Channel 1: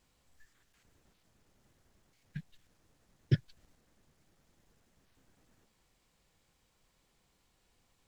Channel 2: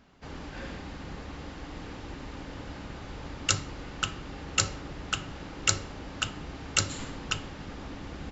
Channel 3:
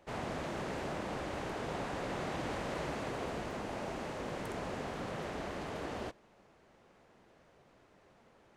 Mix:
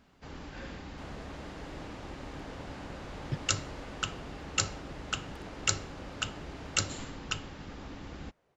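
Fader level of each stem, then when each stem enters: -8.0 dB, -3.5 dB, -9.5 dB; 0.00 s, 0.00 s, 0.90 s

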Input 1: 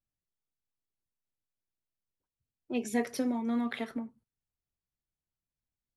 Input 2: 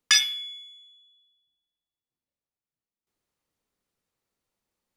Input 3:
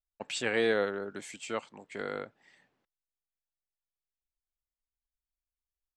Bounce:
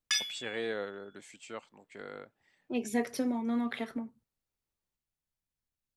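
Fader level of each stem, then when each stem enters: -0.5 dB, -11.0 dB, -8.0 dB; 0.00 s, 0.00 s, 0.00 s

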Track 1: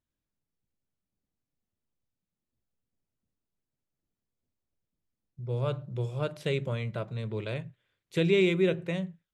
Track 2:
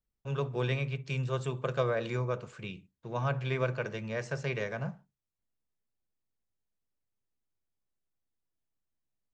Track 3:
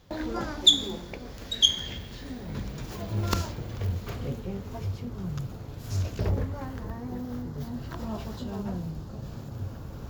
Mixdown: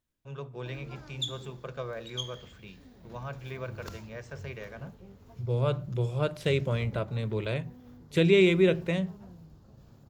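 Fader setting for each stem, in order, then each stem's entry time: +3.0 dB, -7.5 dB, -16.0 dB; 0.00 s, 0.00 s, 0.55 s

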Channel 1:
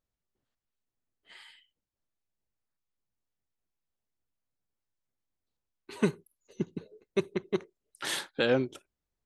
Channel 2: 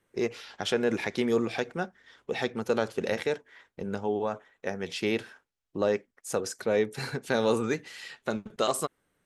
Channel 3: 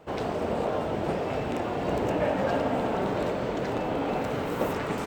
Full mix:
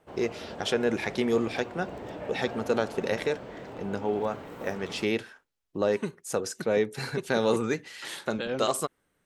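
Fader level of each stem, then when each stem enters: -6.5 dB, +0.5 dB, -12.5 dB; 0.00 s, 0.00 s, 0.00 s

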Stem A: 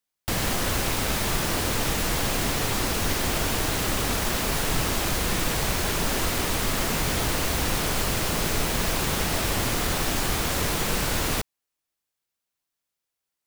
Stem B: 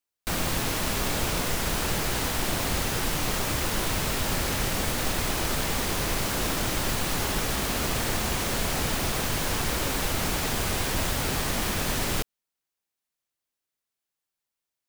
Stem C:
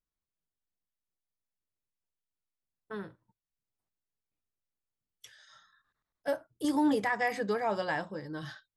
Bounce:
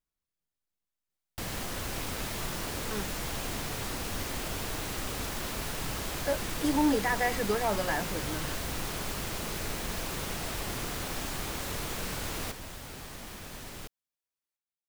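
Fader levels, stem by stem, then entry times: -10.5 dB, -16.0 dB, +1.0 dB; 1.10 s, 1.65 s, 0.00 s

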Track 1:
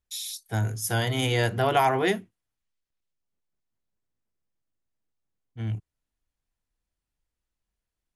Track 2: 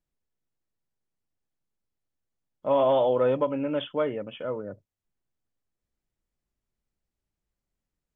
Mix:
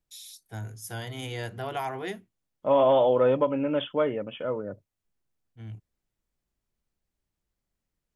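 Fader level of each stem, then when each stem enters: -10.5 dB, +1.5 dB; 0.00 s, 0.00 s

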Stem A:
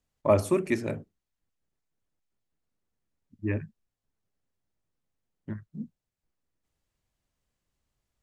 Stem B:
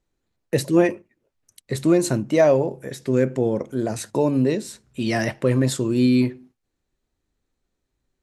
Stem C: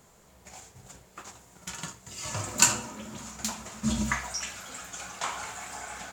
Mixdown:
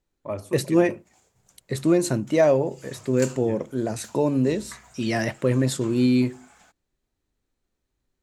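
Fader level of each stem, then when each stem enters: -9.5 dB, -2.0 dB, -15.0 dB; 0.00 s, 0.00 s, 0.60 s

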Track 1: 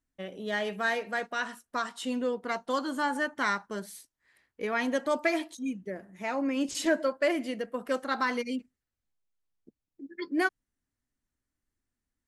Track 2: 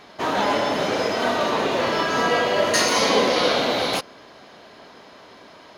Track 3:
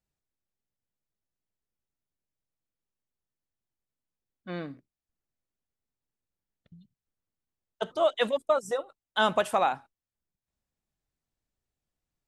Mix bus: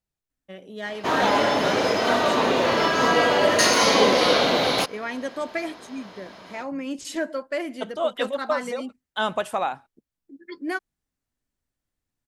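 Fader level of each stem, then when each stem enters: -1.5 dB, +1.0 dB, -0.5 dB; 0.30 s, 0.85 s, 0.00 s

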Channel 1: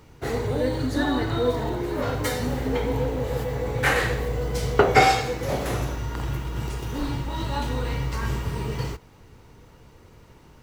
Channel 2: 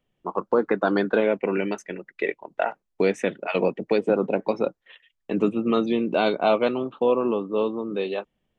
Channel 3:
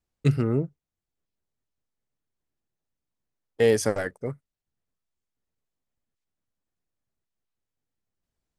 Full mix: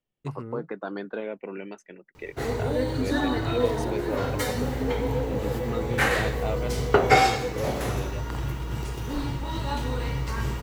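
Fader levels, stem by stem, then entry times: -1.5 dB, -12.0 dB, -13.5 dB; 2.15 s, 0.00 s, 0.00 s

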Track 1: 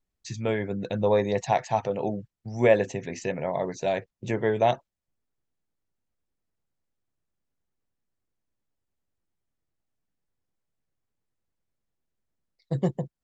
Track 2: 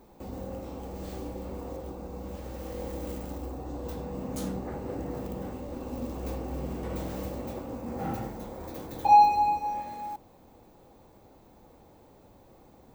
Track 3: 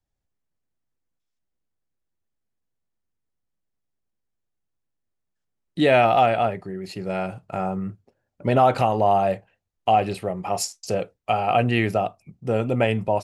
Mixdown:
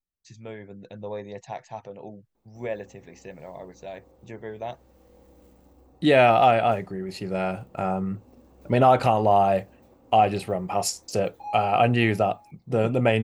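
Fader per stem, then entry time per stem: -12.0 dB, -18.5 dB, 0.0 dB; 0.00 s, 2.35 s, 0.25 s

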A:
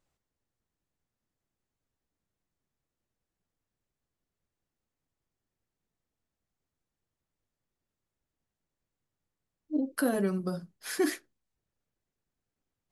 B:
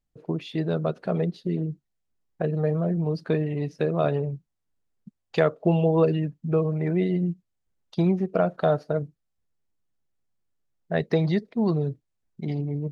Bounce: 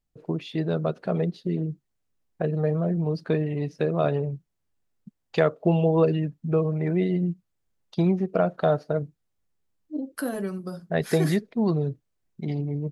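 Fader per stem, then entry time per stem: -1.5 dB, 0.0 dB; 0.20 s, 0.00 s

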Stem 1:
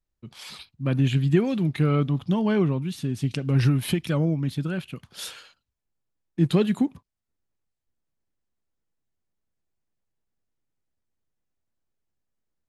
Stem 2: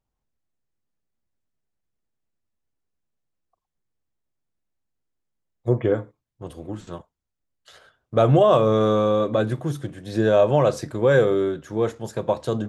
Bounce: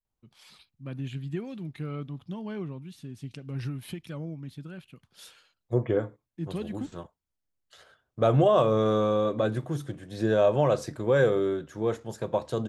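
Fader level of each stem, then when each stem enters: -13.5 dB, -5.0 dB; 0.00 s, 0.05 s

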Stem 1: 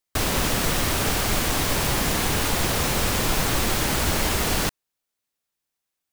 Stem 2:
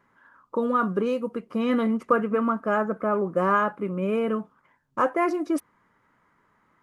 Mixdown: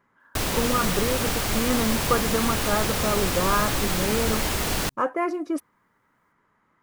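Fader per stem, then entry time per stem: -2.5 dB, -2.0 dB; 0.20 s, 0.00 s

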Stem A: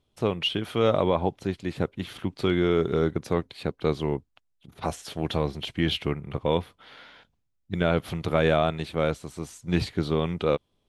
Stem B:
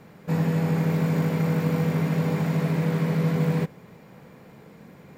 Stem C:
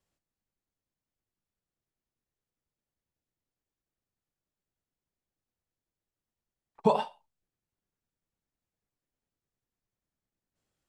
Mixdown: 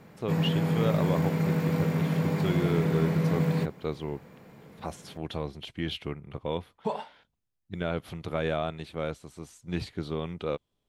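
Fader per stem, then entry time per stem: -7.5 dB, -3.0 dB, -7.0 dB; 0.00 s, 0.00 s, 0.00 s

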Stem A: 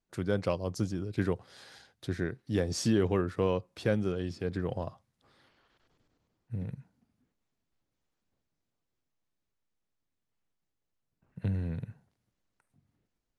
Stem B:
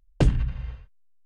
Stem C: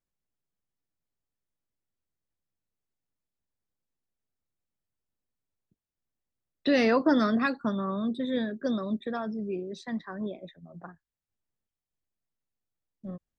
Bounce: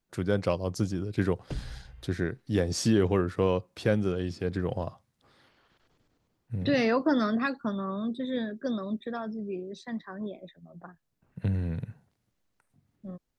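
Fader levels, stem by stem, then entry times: +3.0 dB, -16.0 dB, -2.0 dB; 0.00 s, 1.30 s, 0.00 s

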